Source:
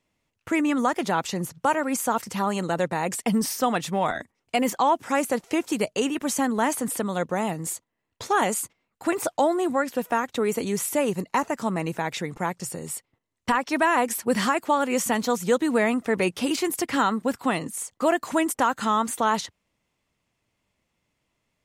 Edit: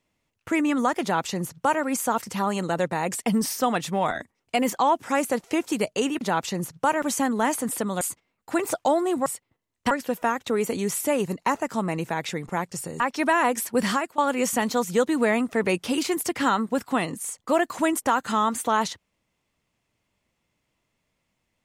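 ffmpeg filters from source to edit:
ffmpeg -i in.wav -filter_complex "[0:a]asplit=8[link_01][link_02][link_03][link_04][link_05][link_06][link_07][link_08];[link_01]atrim=end=6.212[link_09];[link_02]atrim=start=1.018:end=1.832[link_10];[link_03]atrim=start=6.208:end=7.202[link_11];[link_04]atrim=start=8.538:end=9.792[link_12];[link_05]atrim=start=12.878:end=13.532[link_13];[link_06]atrim=start=9.788:end=12.882[link_14];[link_07]atrim=start=13.528:end=14.71,asetpts=PTS-STARTPTS,afade=type=out:start_time=0.822:duration=0.36:curve=qsin:silence=0.1[link_15];[link_08]atrim=start=14.71,asetpts=PTS-STARTPTS,afade=type=in:duration=0.004:curve=hsin:silence=0.1[link_16];[link_09][link_10]acrossfade=duration=0.004:curve1=hsin:curve2=hsin[link_17];[link_17][link_11]acrossfade=duration=0.004:curve1=hsin:curve2=hsin[link_18];[link_18][link_12]acrossfade=duration=0.004:curve1=hsin:curve2=hsin[link_19];[link_19][link_13]acrossfade=duration=0.004:curve1=hsin:curve2=hsin[link_20];[link_20][link_14]acrossfade=duration=0.004:curve1=hsin:curve2=hsin[link_21];[link_15][link_16]concat=n=2:v=0:a=1[link_22];[link_21][link_22]acrossfade=duration=0.004:curve1=hsin:curve2=hsin" out.wav

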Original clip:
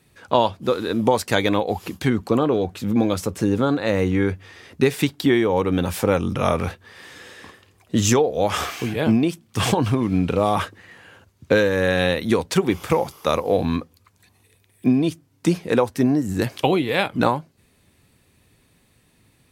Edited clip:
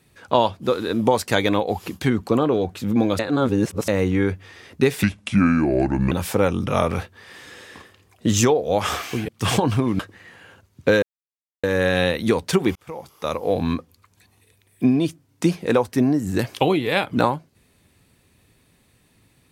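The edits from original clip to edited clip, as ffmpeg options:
ffmpeg -i in.wav -filter_complex "[0:a]asplit=9[link_01][link_02][link_03][link_04][link_05][link_06][link_07][link_08][link_09];[link_01]atrim=end=3.192[link_10];[link_02]atrim=start=3.188:end=3.882,asetpts=PTS-STARTPTS,areverse[link_11];[link_03]atrim=start=3.878:end=5.034[link_12];[link_04]atrim=start=5.03:end=5.8,asetpts=PTS-STARTPTS,asetrate=31311,aresample=44100[link_13];[link_05]atrim=start=5.796:end=8.972[link_14];[link_06]atrim=start=9.428:end=10.142[link_15];[link_07]atrim=start=10.628:end=11.66,asetpts=PTS-STARTPTS,afade=type=out:start_time=1.028:duration=0.004:curve=hsin,apad=pad_dur=0.61[link_16];[link_08]atrim=start=11.66:end=12.78,asetpts=PTS-STARTPTS,afade=type=in:duration=0.004:curve=hsin,afade=type=out:start_time=1.116:duration=0.004:curve=hsin[link_17];[link_09]atrim=start=12.78,asetpts=PTS-STARTPTS,afade=type=in:duration=0.95[link_18];[link_10][link_11]acrossfade=duration=0.004:curve1=hsin:curve2=hsin[link_19];[link_19][link_12]acrossfade=duration=0.004:curve1=hsin:curve2=hsin[link_20];[link_20][link_13]acrossfade=duration=0.004:curve1=hsin:curve2=hsin[link_21];[link_21][link_14]acrossfade=duration=0.004:curve1=hsin:curve2=hsin[link_22];[link_22][link_15]acrossfade=duration=0.004:curve1=hsin:curve2=hsin[link_23];[link_16][link_17][link_18]concat=n=3:v=0:a=1[link_24];[link_23][link_24]acrossfade=duration=0.004:curve1=hsin:curve2=hsin" out.wav

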